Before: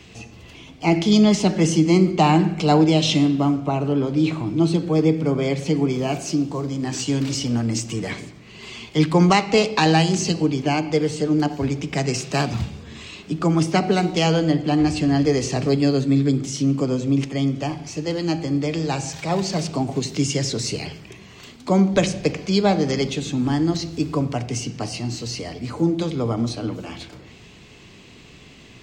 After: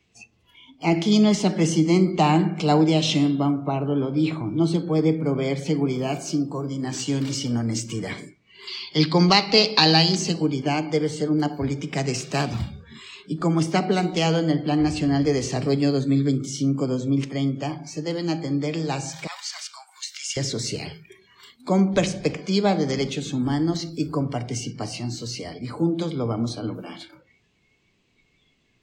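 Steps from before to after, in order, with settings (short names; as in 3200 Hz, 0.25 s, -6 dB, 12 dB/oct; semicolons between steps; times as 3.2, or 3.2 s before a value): 19.27–20.37 HPF 1200 Hz 24 dB/oct; spectral noise reduction 19 dB; 8.67–10.16 synth low-pass 4600 Hz, resonance Q 5.5; gain -2.5 dB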